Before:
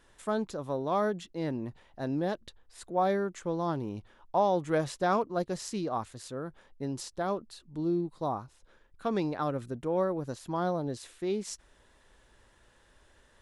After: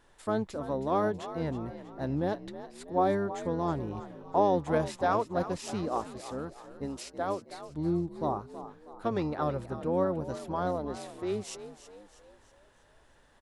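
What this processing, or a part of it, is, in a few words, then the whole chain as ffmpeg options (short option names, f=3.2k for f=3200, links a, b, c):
octave pedal: -filter_complex "[0:a]asplit=3[a][b][c];[a]afade=t=out:st=6.85:d=0.02[d];[b]highpass=f=160:p=1,afade=t=in:st=6.85:d=0.02,afade=t=out:st=7.49:d=0.02[e];[c]afade=t=in:st=7.49:d=0.02[f];[d][e][f]amix=inputs=3:normalize=0,asplit=2[g][h];[h]asetrate=22050,aresample=44100,atempo=2,volume=-6dB[i];[g][i]amix=inputs=2:normalize=0,equalizer=f=750:w=0.58:g=3.5,asplit=6[j][k][l][m][n][o];[k]adelay=322,afreqshift=48,volume=-13dB[p];[l]adelay=644,afreqshift=96,volume=-19.6dB[q];[m]adelay=966,afreqshift=144,volume=-26.1dB[r];[n]adelay=1288,afreqshift=192,volume=-32.7dB[s];[o]adelay=1610,afreqshift=240,volume=-39.2dB[t];[j][p][q][r][s][t]amix=inputs=6:normalize=0,volume=-3dB"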